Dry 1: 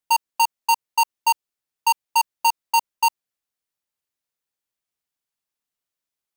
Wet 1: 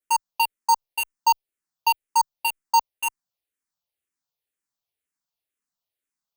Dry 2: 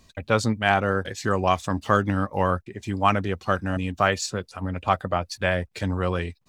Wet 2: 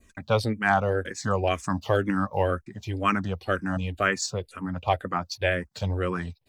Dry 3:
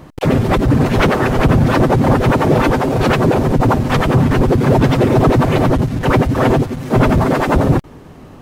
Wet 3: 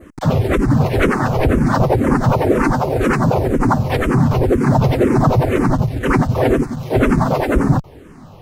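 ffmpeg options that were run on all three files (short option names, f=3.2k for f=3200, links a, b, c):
-filter_complex "[0:a]adynamicequalizer=threshold=0.00891:dfrequency=3300:dqfactor=1.9:tfrequency=3300:tqfactor=1.9:attack=5:release=100:ratio=0.375:range=3.5:mode=cutabove:tftype=bell,asplit=2[a][b];[b]afreqshift=-2[c];[a][c]amix=inputs=2:normalize=1,volume=1dB"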